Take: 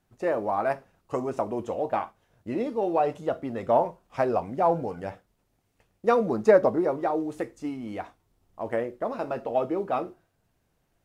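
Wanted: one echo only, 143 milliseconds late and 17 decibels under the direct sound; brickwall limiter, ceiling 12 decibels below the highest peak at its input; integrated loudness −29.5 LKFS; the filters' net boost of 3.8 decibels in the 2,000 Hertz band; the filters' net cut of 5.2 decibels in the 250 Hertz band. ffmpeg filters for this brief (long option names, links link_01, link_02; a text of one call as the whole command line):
ffmpeg -i in.wav -af "equalizer=frequency=250:width_type=o:gain=-7.5,equalizer=frequency=2000:width_type=o:gain=5,alimiter=limit=-20dB:level=0:latency=1,aecho=1:1:143:0.141,volume=3dB" out.wav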